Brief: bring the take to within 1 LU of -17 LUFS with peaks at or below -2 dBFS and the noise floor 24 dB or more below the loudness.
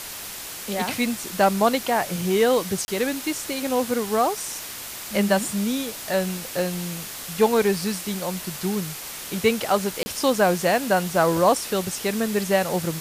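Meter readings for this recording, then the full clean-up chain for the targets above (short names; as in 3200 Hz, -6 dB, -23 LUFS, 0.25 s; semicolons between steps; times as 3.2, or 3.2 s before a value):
dropouts 2; longest dropout 30 ms; noise floor -36 dBFS; noise floor target -48 dBFS; loudness -23.5 LUFS; peak -6.5 dBFS; loudness target -17.0 LUFS
-> interpolate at 2.85/10.03, 30 ms; noise print and reduce 12 dB; gain +6.5 dB; limiter -2 dBFS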